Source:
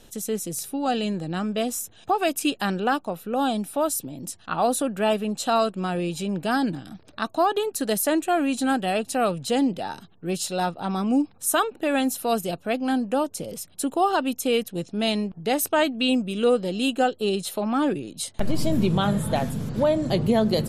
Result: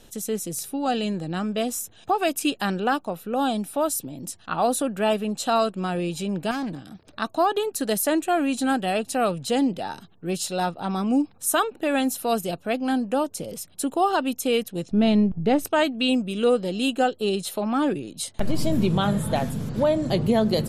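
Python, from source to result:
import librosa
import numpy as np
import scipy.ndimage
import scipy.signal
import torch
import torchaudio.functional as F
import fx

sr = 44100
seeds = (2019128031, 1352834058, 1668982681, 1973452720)

y = fx.tube_stage(x, sr, drive_db=25.0, bias=0.4, at=(6.51, 7.07))
y = fx.riaa(y, sr, side='playback', at=(14.91, 15.65))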